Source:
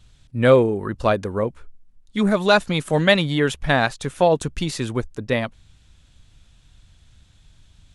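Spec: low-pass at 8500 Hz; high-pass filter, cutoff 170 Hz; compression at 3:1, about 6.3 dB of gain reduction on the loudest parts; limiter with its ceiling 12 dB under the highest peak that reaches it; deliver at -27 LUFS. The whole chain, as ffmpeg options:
-af "highpass=170,lowpass=8.5k,acompressor=threshold=-17dB:ratio=3,volume=1.5dB,alimiter=limit=-15.5dB:level=0:latency=1"

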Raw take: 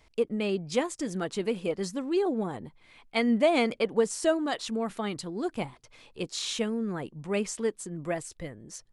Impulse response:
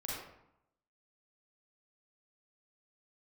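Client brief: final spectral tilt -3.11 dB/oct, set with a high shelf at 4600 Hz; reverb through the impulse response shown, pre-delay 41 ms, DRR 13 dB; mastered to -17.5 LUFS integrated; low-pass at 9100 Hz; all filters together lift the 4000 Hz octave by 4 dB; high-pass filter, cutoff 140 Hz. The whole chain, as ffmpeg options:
-filter_complex "[0:a]highpass=140,lowpass=9.1k,equalizer=f=4k:t=o:g=8.5,highshelf=f=4.6k:g=-7,asplit=2[a][b];[1:a]atrim=start_sample=2205,adelay=41[c];[b][c]afir=irnorm=-1:irlink=0,volume=-14.5dB[d];[a][d]amix=inputs=2:normalize=0,volume=12dB"

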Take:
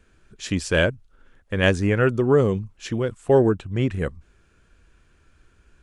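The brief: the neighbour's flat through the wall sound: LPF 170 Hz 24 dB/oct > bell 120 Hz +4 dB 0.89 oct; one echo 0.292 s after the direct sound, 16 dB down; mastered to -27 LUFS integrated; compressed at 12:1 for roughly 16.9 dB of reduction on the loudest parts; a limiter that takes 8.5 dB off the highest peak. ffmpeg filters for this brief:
-af "acompressor=threshold=-29dB:ratio=12,alimiter=level_in=2dB:limit=-24dB:level=0:latency=1,volume=-2dB,lowpass=f=170:w=0.5412,lowpass=f=170:w=1.3066,equalizer=f=120:t=o:w=0.89:g=4,aecho=1:1:292:0.158,volume=13dB"

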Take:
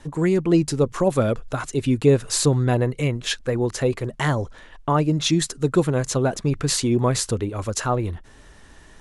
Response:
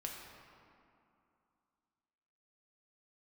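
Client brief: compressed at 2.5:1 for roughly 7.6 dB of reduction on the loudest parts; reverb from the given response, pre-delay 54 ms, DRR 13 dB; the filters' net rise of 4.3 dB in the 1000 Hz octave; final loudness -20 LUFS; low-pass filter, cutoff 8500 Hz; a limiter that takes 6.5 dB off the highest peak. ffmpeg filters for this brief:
-filter_complex "[0:a]lowpass=8.5k,equalizer=f=1k:t=o:g=5.5,acompressor=threshold=-22dB:ratio=2.5,alimiter=limit=-17.5dB:level=0:latency=1,asplit=2[a][b];[1:a]atrim=start_sample=2205,adelay=54[c];[b][c]afir=irnorm=-1:irlink=0,volume=-12dB[d];[a][d]amix=inputs=2:normalize=0,volume=7.5dB"

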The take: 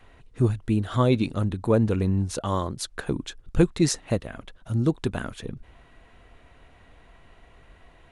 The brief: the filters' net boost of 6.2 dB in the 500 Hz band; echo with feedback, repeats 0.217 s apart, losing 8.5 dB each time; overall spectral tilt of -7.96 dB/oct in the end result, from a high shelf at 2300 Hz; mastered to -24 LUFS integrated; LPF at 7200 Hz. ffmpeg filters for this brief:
-af "lowpass=7.2k,equalizer=f=500:t=o:g=8,highshelf=f=2.3k:g=-7,aecho=1:1:217|434|651|868:0.376|0.143|0.0543|0.0206,volume=-1.5dB"

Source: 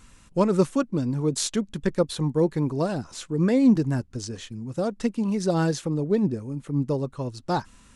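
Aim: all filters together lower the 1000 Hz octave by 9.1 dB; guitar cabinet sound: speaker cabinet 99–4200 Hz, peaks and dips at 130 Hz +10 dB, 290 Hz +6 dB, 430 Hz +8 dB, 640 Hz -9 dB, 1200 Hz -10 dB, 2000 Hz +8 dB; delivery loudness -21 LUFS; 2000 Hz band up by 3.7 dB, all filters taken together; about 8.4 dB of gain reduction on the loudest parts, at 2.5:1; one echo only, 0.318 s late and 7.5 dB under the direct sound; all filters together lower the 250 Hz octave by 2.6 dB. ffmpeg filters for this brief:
-af "equalizer=f=250:t=o:g=-8,equalizer=f=1k:t=o:g=-7.5,equalizer=f=2k:t=o:g=5,acompressor=threshold=-32dB:ratio=2.5,highpass=99,equalizer=f=130:t=q:w=4:g=10,equalizer=f=290:t=q:w=4:g=6,equalizer=f=430:t=q:w=4:g=8,equalizer=f=640:t=q:w=4:g=-9,equalizer=f=1.2k:t=q:w=4:g=-10,equalizer=f=2k:t=q:w=4:g=8,lowpass=f=4.2k:w=0.5412,lowpass=f=4.2k:w=1.3066,aecho=1:1:318:0.422,volume=9.5dB"

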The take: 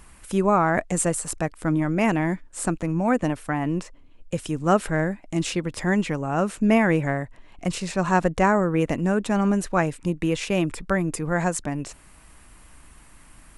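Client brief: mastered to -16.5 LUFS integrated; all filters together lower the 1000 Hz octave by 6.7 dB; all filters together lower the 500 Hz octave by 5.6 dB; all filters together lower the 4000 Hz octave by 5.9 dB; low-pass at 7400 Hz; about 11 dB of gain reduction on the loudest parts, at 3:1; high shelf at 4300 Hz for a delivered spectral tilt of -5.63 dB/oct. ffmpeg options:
-af "lowpass=7.4k,equalizer=f=500:t=o:g=-5.5,equalizer=f=1k:t=o:g=-6.5,equalizer=f=4k:t=o:g=-4.5,highshelf=f=4.3k:g=-5.5,acompressor=threshold=-33dB:ratio=3,volume=19dB"

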